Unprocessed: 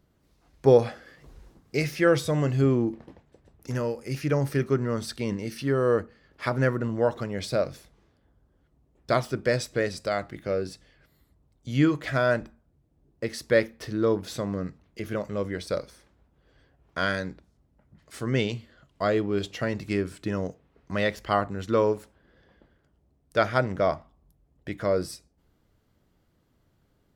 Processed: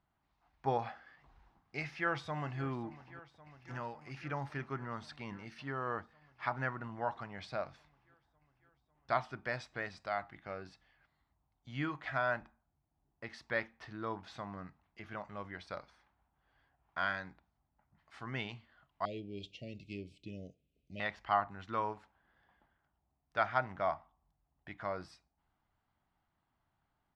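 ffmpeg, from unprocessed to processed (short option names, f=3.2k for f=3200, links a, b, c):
-filter_complex "[0:a]asplit=2[a][b];[b]afade=t=in:st=1.81:d=0.01,afade=t=out:st=2.64:d=0.01,aecho=0:1:550|1100|1650|2200|2750|3300|3850|4400|4950|5500|6050|6600:0.125893|0.100714|0.0805712|0.064457|0.0515656|0.0412525|0.033002|0.0264016|0.0211213|0.016897|0.0135176|0.0108141[c];[a][c]amix=inputs=2:normalize=0,asettb=1/sr,asplit=3[d][e][f];[d]atrim=end=19.054[g];[e]atrim=start=19.05:end=21,asetpts=PTS-STARTPTS,afade=t=in:d=0.004:c=qsin,afade=t=out:st=1.946:d=0.004:c=qsin,asuperstop=centerf=1200:order=12:qfactor=0.63[h];[f]atrim=start=20.996[i];[g][h]acrossfade=d=0.004:c1=hsin:c2=qsin[j];[j][i]acrossfade=d=0.004:c1=qsin:c2=hsin,lowpass=3.1k,lowshelf=f=630:t=q:w=3:g=-7.5,volume=-8dB"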